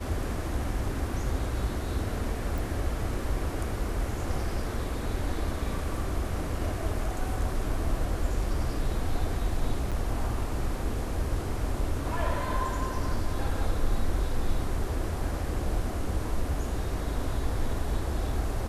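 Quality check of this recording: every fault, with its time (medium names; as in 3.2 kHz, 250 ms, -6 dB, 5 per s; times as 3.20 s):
2.58 s: pop
9.91–9.92 s: dropout 6.7 ms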